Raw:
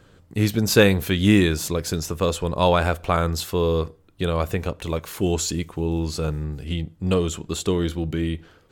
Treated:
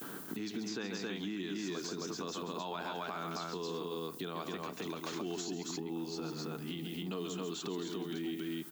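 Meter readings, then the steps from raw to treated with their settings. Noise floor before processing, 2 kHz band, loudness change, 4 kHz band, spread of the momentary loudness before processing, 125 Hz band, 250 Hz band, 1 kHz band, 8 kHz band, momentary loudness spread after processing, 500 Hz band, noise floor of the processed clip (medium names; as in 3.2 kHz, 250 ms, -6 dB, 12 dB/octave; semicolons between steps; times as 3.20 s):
-55 dBFS, -17.0 dB, -16.5 dB, -13.0 dB, 11 LU, -23.0 dB, -15.0 dB, -14.5 dB, -15.0 dB, 2 LU, -17.5 dB, -46 dBFS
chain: gate with hold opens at -44 dBFS; steep low-pass 6.8 kHz 48 dB/octave; peaking EQ 530 Hz -14.5 dB 0.36 oct; on a send: loudspeakers at several distances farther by 47 m -9 dB, 92 m -4 dB; on the sum: added noise violet -54 dBFS; compression 6:1, threshold -33 dBFS, peak gain reduction 20 dB; peak limiter -31 dBFS, peak gain reduction 9 dB; high-pass 210 Hz 24 dB/octave; peaking EQ 2.3 kHz -4.5 dB 0.98 oct; three bands compressed up and down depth 70%; trim +3 dB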